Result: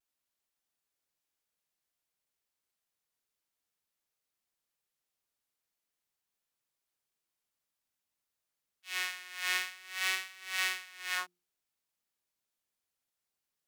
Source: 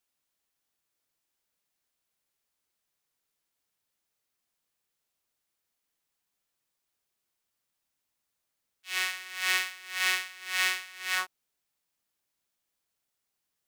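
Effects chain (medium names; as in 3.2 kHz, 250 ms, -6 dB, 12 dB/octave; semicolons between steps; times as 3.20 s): hum notches 60/120/180/240/300/360 Hz; vibrato 0.51 Hz 28 cents; trim -5 dB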